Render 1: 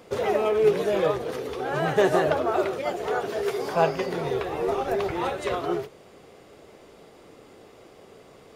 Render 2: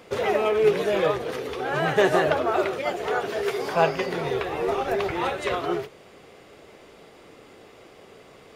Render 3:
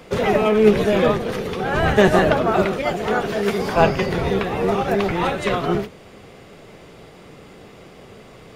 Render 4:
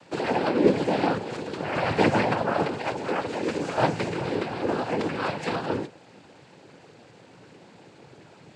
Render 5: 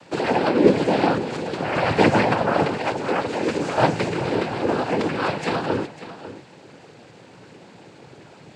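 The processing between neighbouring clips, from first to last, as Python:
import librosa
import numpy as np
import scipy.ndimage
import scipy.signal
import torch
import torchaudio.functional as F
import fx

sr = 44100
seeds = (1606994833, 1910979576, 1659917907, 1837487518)

y1 = fx.peak_eq(x, sr, hz=2300.0, db=5.0, octaves=1.8)
y2 = fx.octave_divider(y1, sr, octaves=1, level_db=3.0)
y2 = y2 * librosa.db_to_amplitude(4.5)
y3 = fx.noise_vocoder(y2, sr, seeds[0], bands=8)
y3 = y3 * librosa.db_to_amplitude(-6.5)
y4 = y3 + 10.0 ** (-14.0 / 20.0) * np.pad(y3, (int(548 * sr / 1000.0), 0))[:len(y3)]
y4 = y4 * librosa.db_to_amplitude(4.5)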